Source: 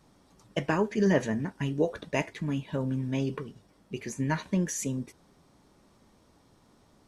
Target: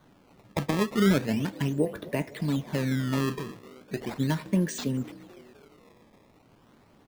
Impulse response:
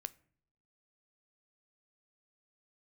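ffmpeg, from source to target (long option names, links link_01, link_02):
-filter_complex "[0:a]acrossover=split=380[link_01][link_02];[link_02]acompressor=threshold=-35dB:ratio=4[link_03];[link_01][link_03]amix=inputs=2:normalize=0,asplit=6[link_04][link_05][link_06][link_07][link_08][link_09];[link_05]adelay=254,afreqshift=57,volume=-20.5dB[link_10];[link_06]adelay=508,afreqshift=114,volume=-25.2dB[link_11];[link_07]adelay=762,afreqshift=171,volume=-30dB[link_12];[link_08]adelay=1016,afreqshift=228,volume=-34.7dB[link_13];[link_09]adelay=1270,afreqshift=285,volume=-39.4dB[link_14];[link_04][link_10][link_11][link_12][link_13][link_14]amix=inputs=6:normalize=0,acrusher=samples=17:mix=1:aa=0.000001:lfo=1:lforange=27.2:lforate=0.37,asplit=2[link_15][link_16];[link_16]highpass=frequency=48:width=0.5412,highpass=frequency=48:width=1.3066[link_17];[1:a]atrim=start_sample=2205,lowpass=6100[link_18];[link_17][link_18]afir=irnorm=-1:irlink=0,volume=-2.5dB[link_19];[link_15][link_19]amix=inputs=2:normalize=0"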